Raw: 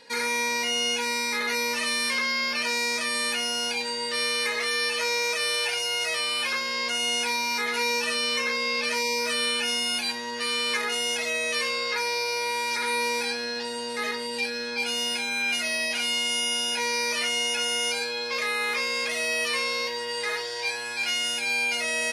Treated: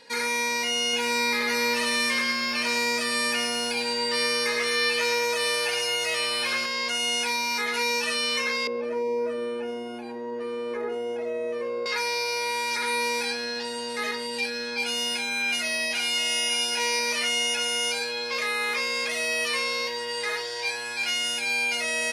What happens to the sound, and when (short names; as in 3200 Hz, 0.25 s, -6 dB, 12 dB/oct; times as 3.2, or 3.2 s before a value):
0.82–6.66 lo-fi delay 0.109 s, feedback 55%, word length 9-bit, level -8 dB
8.67–11.86 EQ curve 220 Hz 0 dB, 330 Hz +11 dB, 4300 Hz -26 dB
15.38–16.43 echo throw 0.56 s, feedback 50%, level -9 dB